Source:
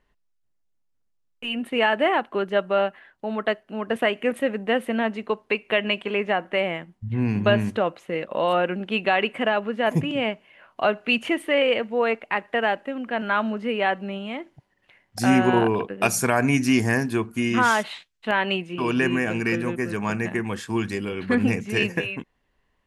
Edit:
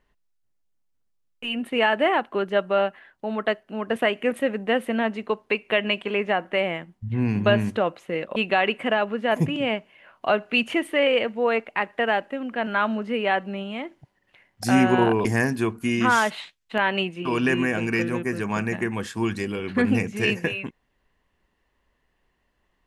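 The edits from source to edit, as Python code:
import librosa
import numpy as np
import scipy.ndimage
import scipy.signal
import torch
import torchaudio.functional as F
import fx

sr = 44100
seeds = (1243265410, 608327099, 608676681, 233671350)

y = fx.edit(x, sr, fx.cut(start_s=8.36, length_s=0.55),
    fx.cut(start_s=15.8, length_s=0.98), tone=tone)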